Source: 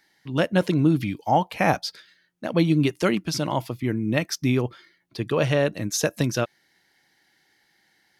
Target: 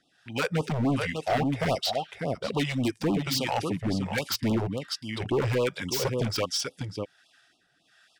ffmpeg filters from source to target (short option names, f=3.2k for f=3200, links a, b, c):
-filter_complex "[0:a]asetrate=38170,aresample=44100,atempo=1.15535,lowpass=6.6k,highshelf=f=4.8k:g=8.5,bandreject=f=4.2k:w=7.7,aecho=1:1:596:0.376,acrossover=split=1800[a][b];[b]aeval=exprs='0.0562*(abs(mod(val(0)/0.0562+3,4)-2)-1)':c=same[c];[a][c]amix=inputs=2:normalize=0,acrossover=split=620[d][e];[d]aeval=exprs='val(0)*(1-0.7/2+0.7/2*cos(2*PI*1.3*n/s))':c=same[f];[e]aeval=exprs='val(0)*(1-0.7/2-0.7/2*cos(2*PI*1.3*n/s))':c=same[g];[f][g]amix=inputs=2:normalize=0,volume=24dB,asoftclip=hard,volume=-24dB,lowshelf=f=170:g=-6,afftfilt=real='re*(1-between(b*sr/1024,220*pow(1900/220,0.5+0.5*sin(2*PI*3.6*pts/sr))/1.41,220*pow(1900/220,0.5+0.5*sin(2*PI*3.6*pts/sr))*1.41))':imag='im*(1-between(b*sr/1024,220*pow(1900/220,0.5+0.5*sin(2*PI*3.6*pts/sr))/1.41,220*pow(1900/220,0.5+0.5*sin(2*PI*3.6*pts/sr))*1.41))':win_size=1024:overlap=0.75,volume=4dB"